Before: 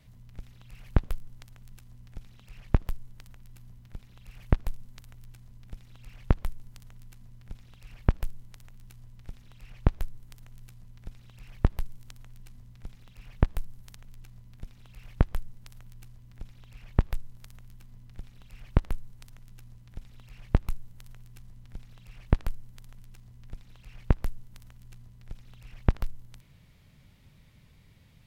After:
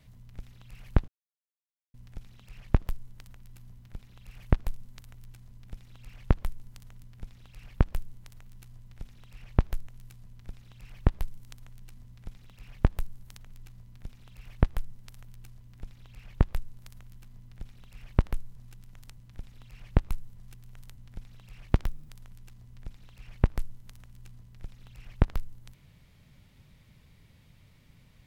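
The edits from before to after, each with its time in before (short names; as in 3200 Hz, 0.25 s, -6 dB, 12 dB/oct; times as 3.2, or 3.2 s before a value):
1.08–1.94 mute
7.03–7.31 cut
10.15–10.45 cut
19.14–19.76 reverse
20.93–21.55 reverse
22.3–22.75 speed 124%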